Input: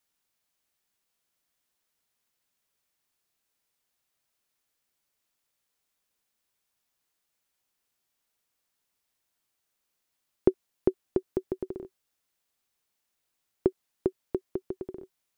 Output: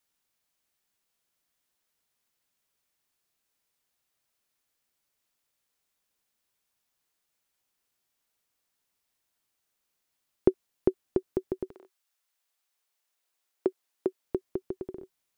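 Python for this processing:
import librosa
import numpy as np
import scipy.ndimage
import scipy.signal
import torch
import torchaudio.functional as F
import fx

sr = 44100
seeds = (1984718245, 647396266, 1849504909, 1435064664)

y = fx.highpass(x, sr, hz=fx.line((11.69, 910.0), (14.23, 260.0)), slope=12, at=(11.69, 14.23), fade=0.02)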